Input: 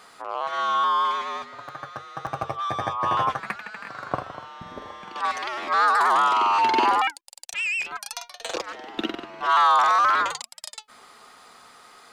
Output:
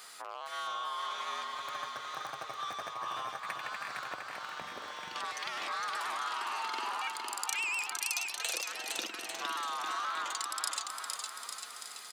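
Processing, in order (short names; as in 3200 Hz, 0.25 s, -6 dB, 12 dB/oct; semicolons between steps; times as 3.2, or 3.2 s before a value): bell 1000 Hz -2 dB; compressor, threshold -34 dBFS, peak gain reduction 15.5 dB; tilt +3.5 dB/oct; bouncing-ball echo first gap 0.46 s, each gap 0.85×, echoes 5; gain -4.5 dB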